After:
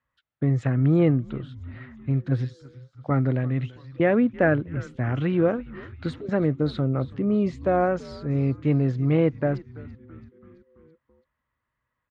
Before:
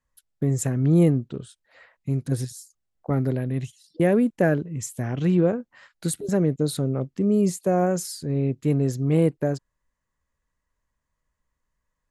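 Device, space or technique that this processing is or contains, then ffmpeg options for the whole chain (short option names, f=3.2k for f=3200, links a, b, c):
frequency-shifting delay pedal into a guitar cabinet: -filter_complex "[0:a]asplit=6[a][b][c][d][e][f];[b]adelay=333,afreqshift=-130,volume=-18dB[g];[c]adelay=666,afreqshift=-260,volume=-22.7dB[h];[d]adelay=999,afreqshift=-390,volume=-27.5dB[i];[e]adelay=1332,afreqshift=-520,volume=-32.2dB[j];[f]adelay=1665,afreqshift=-650,volume=-36.9dB[k];[a][g][h][i][j][k]amix=inputs=6:normalize=0,highpass=78,equalizer=f=120:t=q:w=4:g=3,equalizer=f=180:t=q:w=4:g=-7,equalizer=f=410:t=q:w=4:g=-5,equalizer=f=1.3k:t=q:w=4:g=6,equalizer=f=2k:t=q:w=4:g=3,lowpass=f=3.5k:w=0.5412,lowpass=f=3.5k:w=1.3066,volume=1.5dB"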